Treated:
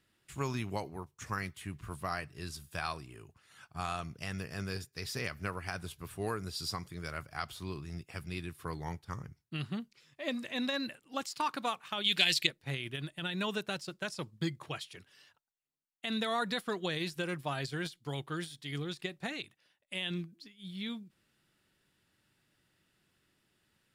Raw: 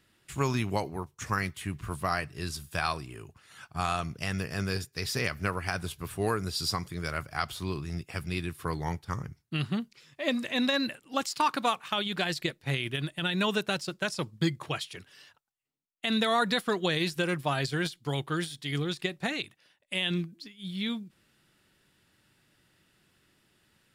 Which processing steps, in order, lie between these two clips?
12.04–12.47 s: resonant high shelf 1.8 kHz +12 dB, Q 1.5; trim -7 dB

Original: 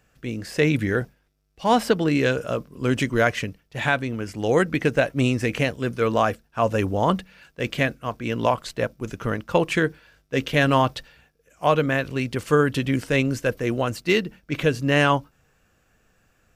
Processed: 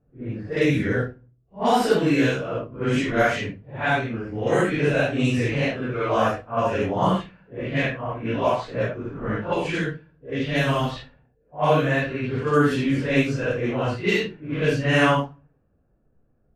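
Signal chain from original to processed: phase randomisation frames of 200 ms; level-controlled noise filter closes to 510 Hz, open at -16 dBFS; 9.53–10.96 s: peaking EQ 920 Hz -5 dB 2.8 oct; simulated room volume 240 m³, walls furnished, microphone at 0.31 m

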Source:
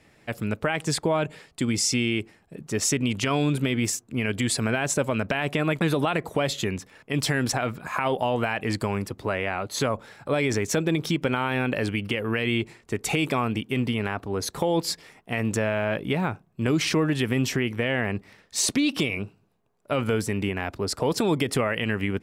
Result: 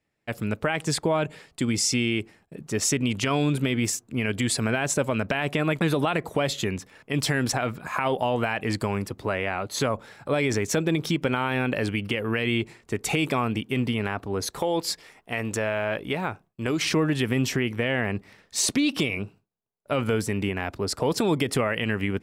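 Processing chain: gate with hold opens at -46 dBFS; 14.46–16.82 s: peaking EQ 160 Hz -6.5 dB 1.8 oct

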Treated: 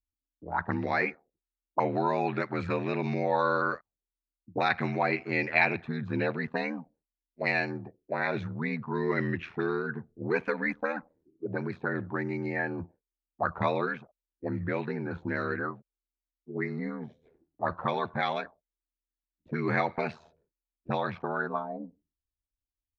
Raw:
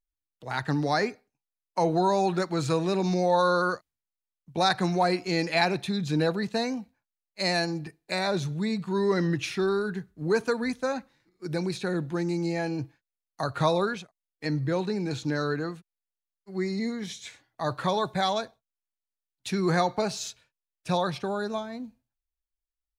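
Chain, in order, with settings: ring modulator 40 Hz; touch-sensitive low-pass 280–2300 Hz up, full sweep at -26 dBFS; trim -2 dB

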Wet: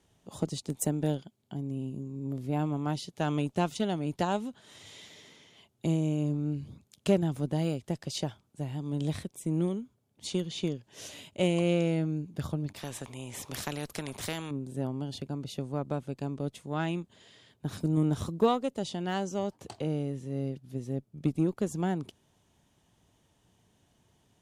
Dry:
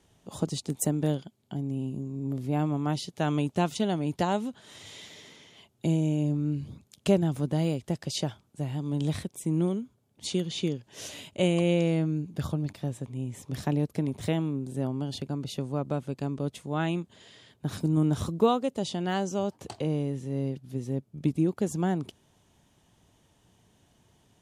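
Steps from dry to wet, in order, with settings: Chebyshev shaper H 6 -39 dB, 7 -31 dB, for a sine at -11.5 dBFS; 12.76–14.51 s: spectrum-flattening compressor 2:1; trim -2 dB

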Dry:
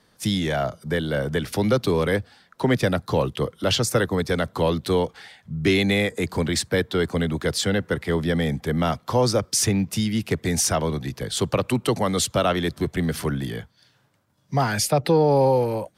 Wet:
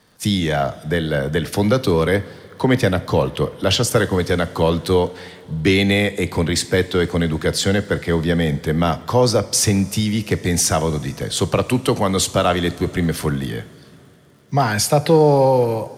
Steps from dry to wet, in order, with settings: crackle 82 per s -48 dBFS; two-slope reverb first 0.43 s, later 4.3 s, from -16 dB, DRR 12 dB; trim +4 dB

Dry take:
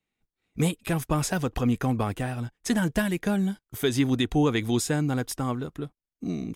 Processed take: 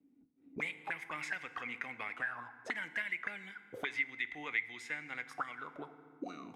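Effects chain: auto-wah 270–2100 Hz, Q 17, up, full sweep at -23.5 dBFS; FDN reverb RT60 1.2 s, low-frequency decay 1.55×, high-frequency decay 0.75×, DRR 12 dB; three bands compressed up and down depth 70%; trim +11 dB

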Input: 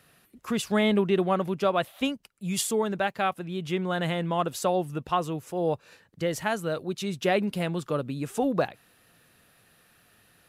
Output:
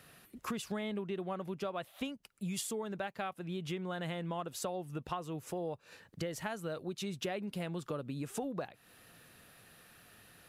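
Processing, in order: compression 6:1, threshold -38 dBFS, peak gain reduction 18 dB; trim +1.5 dB

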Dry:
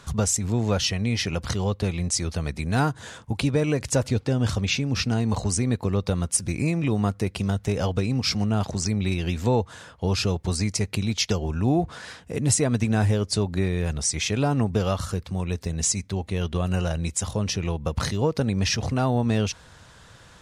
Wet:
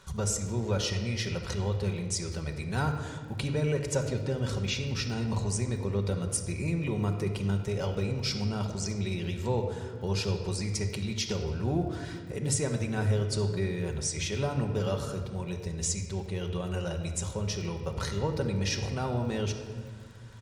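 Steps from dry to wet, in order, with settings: comb 2.1 ms, depth 34%; crackle 36 per s -37 dBFS; on a send: reverberation RT60 1.7 s, pre-delay 5 ms, DRR 3 dB; on the sum: trim -8.5 dB

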